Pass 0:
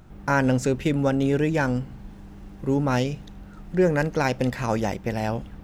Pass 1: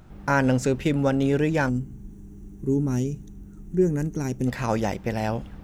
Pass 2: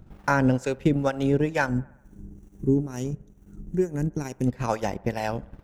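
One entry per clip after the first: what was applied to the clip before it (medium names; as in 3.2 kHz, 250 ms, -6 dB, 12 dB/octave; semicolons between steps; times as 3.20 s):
time-frequency box 1.69–4.47 s, 440–5600 Hz -15 dB
harmonic tremolo 2.2 Hz, depth 70%, crossover 510 Hz; transient shaper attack +3 dB, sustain -11 dB; feedback echo behind a band-pass 65 ms, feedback 61%, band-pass 880 Hz, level -21 dB; trim +1.5 dB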